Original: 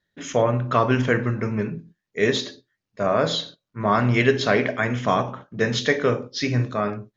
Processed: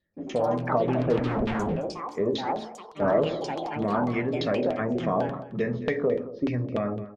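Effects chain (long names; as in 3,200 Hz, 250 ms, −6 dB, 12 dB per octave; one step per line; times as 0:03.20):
flat-topped bell 1,700 Hz −9 dB 2.4 octaves
notch filter 1,500 Hz, Q 6.8
in parallel at −1.5 dB: brickwall limiter −18.5 dBFS, peak gain reduction 11 dB
on the sum: downward compressor, threshold −18 dBFS, peak gain reduction 7.5 dB
0:01.28–0:01.76: comparator with hysteresis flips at −30 dBFS
auto-filter low-pass saw down 3.4 Hz 390–3,200 Hz
flanger 0.45 Hz, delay 3.4 ms, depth 1.5 ms, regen −64%
delay with pitch and tempo change per echo 137 ms, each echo +5 semitones, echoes 2, each echo −6 dB
on a send: single-tap delay 216 ms −15.5 dB
0:02.37–0:03.10: on the sum: multiband upward and downward expander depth 70%
level −1 dB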